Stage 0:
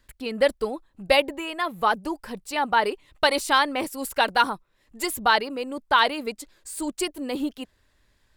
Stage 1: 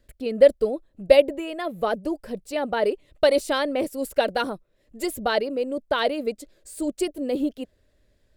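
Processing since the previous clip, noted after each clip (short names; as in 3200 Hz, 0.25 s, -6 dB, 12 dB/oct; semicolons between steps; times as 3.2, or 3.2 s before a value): resonant low shelf 740 Hz +6.5 dB, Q 3; gain -5 dB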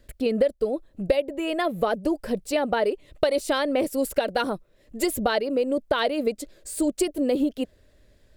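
compressor 6:1, threshold -26 dBFS, peak gain reduction 17 dB; gain +6.5 dB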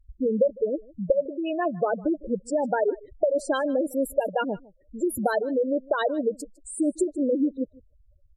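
spectral gate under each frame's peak -10 dB strong; echo 0.155 s -23 dB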